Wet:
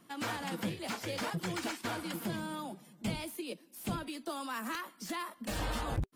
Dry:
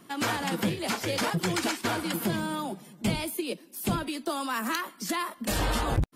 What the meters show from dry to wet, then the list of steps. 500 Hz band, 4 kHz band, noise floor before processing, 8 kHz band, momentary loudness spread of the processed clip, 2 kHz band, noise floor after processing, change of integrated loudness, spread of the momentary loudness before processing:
-8.5 dB, -8.5 dB, -54 dBFS, -9.5 dB, 5 LU, -8.0 dB, -62 dBFS, -8.5 dB, 5 LU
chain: notch 390 Hz, Q 12; slew limiter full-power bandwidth 150 Hz; gain -8 dB

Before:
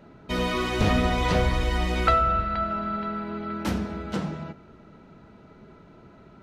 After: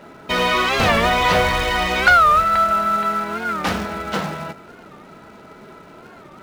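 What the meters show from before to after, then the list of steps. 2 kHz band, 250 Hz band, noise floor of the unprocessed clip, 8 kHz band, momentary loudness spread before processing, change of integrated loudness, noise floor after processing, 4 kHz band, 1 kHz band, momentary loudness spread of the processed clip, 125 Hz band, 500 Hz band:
+14.0 dB, +1.0 dB, -51 dBFS, +9.5 dB, 10 LU, +8.5 dB, -43 dBFS, +10.5 dB, +10.5 dB, 13 LU, -1.0 dB, +6.5 dB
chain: notches 60/120 Hz; dynamic EQ 300 Hz, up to -6 dB, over -42 dBFS, Q 1.4; short-mantissa float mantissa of 2-bit; overdrive pedal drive 14 dB, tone 3400 Hz, clips at -8.5 dBFS; record warp 45 rpm, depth 160 cents; gain +5 dB

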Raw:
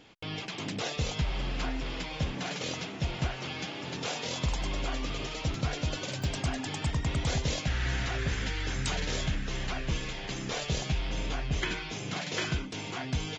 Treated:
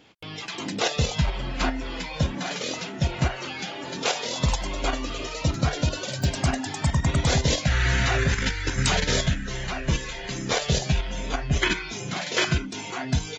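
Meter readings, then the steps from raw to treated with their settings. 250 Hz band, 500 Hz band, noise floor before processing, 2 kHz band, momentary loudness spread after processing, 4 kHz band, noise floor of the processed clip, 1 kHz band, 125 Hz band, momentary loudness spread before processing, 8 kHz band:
+7.0 dB, +7.5 dB, -40 dBFS, +7.5 dB, 10 LU, +6.5 dB, -36 dBFS, +8.0 dB, +7.0 dB, 5 LU, +8.5 dB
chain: HPF 56 Hz 6 dB/oct; spectral noise reduction 10 dB; in parallel at +3 dB: level quantiser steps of 17 dB; on the sum: gain +4 dB

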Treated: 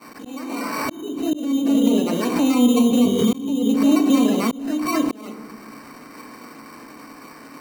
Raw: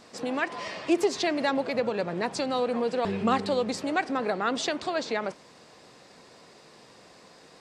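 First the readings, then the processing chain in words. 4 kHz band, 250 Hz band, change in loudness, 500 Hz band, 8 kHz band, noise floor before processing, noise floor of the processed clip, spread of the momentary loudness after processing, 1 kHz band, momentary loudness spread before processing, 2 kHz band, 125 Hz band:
+4.0 dB, +14.0 dB, +9.0 dB, +2.0 dB, +8.0 dB, -54 dBFS, -42 dBFS, 16 LU, +0.5 dB, 5 LU, -1.0 dB, +8.0 dB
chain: bin magnitudes rounded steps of 30 dB; treble ducked by the level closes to 330 Hz, closed at -22.5 dBFS; expander -50 dBFS; HPF 190 Hz 12 dB/oct; low-pass opened by the level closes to 3000 Hz; high shelf 3000 Hz +9.5 dB; limiter -28.5 dBFS, peak gain reduction 10 dB; small resonant body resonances 240/1100 Hz, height 16 dB, ringing for 40 ms; sample-and-hold 13×; FDN reverb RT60 0.91 s, low-frequency decay 1.25×, high-frequency decay 0.35×, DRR 3.5 dB; auto swell 0.609 s; backwards sustainer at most 70 dB/s; gain +7.5 dB

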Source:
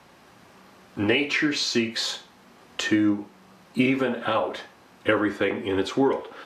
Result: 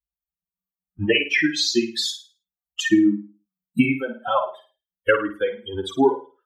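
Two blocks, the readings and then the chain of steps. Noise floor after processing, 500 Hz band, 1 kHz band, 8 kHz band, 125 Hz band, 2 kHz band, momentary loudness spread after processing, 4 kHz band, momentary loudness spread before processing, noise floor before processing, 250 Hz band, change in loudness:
under -85 dBFS, +2.0 dB, +3.0 dB, +3.5 dB, +1.5 dB, +2.5 dB, 12 LU, +3.0 dB, 10 LU, -54 dBFS, +2.5 dB, +2.5 dB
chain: per-bin expansion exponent 3; flutter echo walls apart 9.1 m, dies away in 0.35 s; gain +8.5 dB

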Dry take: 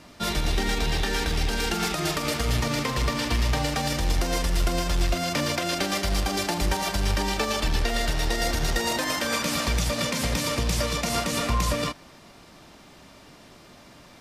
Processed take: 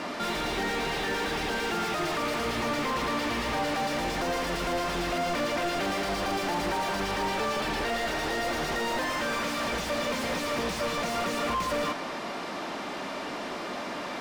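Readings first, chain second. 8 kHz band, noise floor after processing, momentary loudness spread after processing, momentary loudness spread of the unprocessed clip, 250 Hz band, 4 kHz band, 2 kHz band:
-8.5 dB, -36 dBFS, 6 LU, 1 LU, -2.5 dB, -5.0 dB, -1.0 dB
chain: resonant low shelf 160 Hz -6.5 dB, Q 1.5; overdrive pedal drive 37 dB, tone 1300 Hz, clips at -12 dBFS; gain -7.5 dB

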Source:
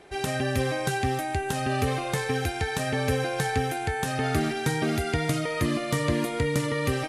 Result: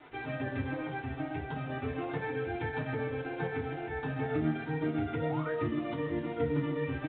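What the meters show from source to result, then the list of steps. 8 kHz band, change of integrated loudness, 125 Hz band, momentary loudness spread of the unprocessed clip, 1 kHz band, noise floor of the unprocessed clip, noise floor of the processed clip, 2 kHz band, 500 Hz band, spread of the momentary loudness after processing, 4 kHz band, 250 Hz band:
under -40 dB, -7.5 dB, -8.0 dB, 2 LU, -10.0 dB, -32 dBFS, -41 dBFS, -9.0 dB, -6.5 dB, 5 LU, -17.5 dB, -4.5 dB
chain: HPF 42 Hz 12 dB/oct; frequency-shifting echo 0.129 s, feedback 51%, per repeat -120 Hz, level -20.5 dB; compressor 3:1, threshold -28 dBFS, peak gain reduction 7 dB; high shelf 3100 Hz -12 dB; chopper 7.7 Hz, depth 60%, duty 65%; requantised 8-bit, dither none; vocal rider 2 s; flange 0.37 Hz, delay 7.7 ms, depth 7.2 ms, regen +47%; low shelf 81 Hz -9.5 dB; painted sound rise, 5.17–5.52, 450–1800 Hz -45 dBFS; FDN reverb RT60 0.32 s, low-frequency decay 1.3×, high-frequency decay 0.6×, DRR -8 dB; gain -6.5 dB; µ-law 64 kbps 8000 Hz

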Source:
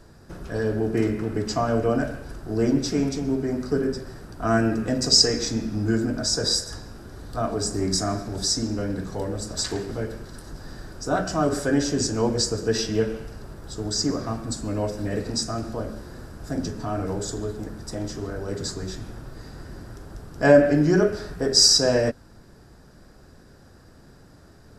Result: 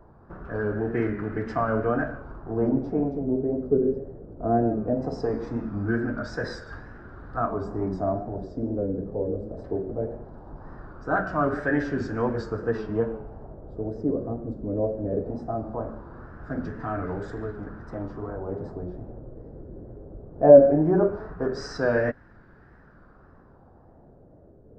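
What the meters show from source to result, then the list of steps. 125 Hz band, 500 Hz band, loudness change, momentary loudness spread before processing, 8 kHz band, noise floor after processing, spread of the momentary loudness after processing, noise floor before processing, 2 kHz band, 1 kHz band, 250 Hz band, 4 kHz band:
-3.5 dB, +1.0 dB, -2.5 dB, 23 LU, under -30 dB, -53 dBFS, 19 LU, -50 dBFS, -2.0 dB, +0.5 dB, -2.5 dB, under -25 dB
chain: LFO low-pass sine 0.19 Hz 490–1700 Hz; wow and flutter 72 cents; gain -3.5 dB

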